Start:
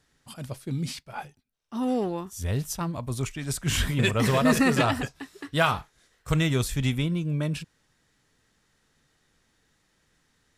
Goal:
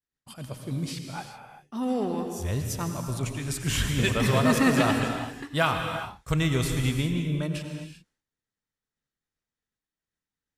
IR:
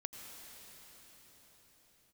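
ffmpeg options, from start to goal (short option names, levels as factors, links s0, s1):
-filter_complex "[0:a]agate=range=0.0224:threshold=0.00224:ratio=3:detection=peak[s0];[1:a]atrim=start_sample=2205,afade=t=out:st=0.45:d=0.01,atrim=end_sample=20286[s1];[s0][s1]afir=irnorm=-1:irlink=0,volume=1.33"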